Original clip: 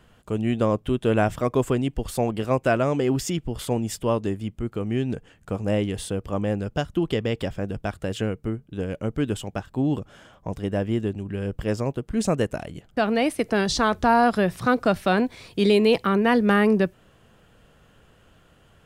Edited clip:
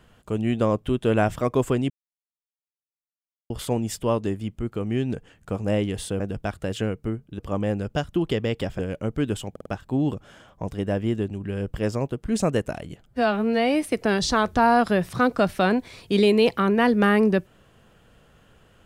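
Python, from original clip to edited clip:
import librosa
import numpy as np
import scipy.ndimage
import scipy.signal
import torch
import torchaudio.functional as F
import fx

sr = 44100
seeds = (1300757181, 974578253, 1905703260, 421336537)

y = fx.edit(x, sr, fx.silence(start_s=1.9, length_s=1.6),
    fx.move(start_s=7.6, length_s=1.19, to_s=6.2),
    fx.stutter(start_s=9.51, slice_s=0.05, count=4),
    fx.stretch_span(start_s=12.92, length_s=0.38, factor=2.0), tone=tone)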